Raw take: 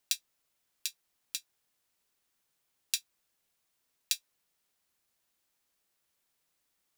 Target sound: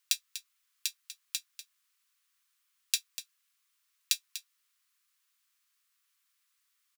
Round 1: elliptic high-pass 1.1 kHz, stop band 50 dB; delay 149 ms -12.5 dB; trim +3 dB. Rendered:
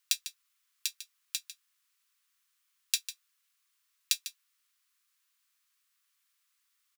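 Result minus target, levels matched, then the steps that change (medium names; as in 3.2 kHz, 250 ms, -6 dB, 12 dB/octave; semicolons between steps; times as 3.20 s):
echo 95 ms early
change: delay 244 ms -12.5 dB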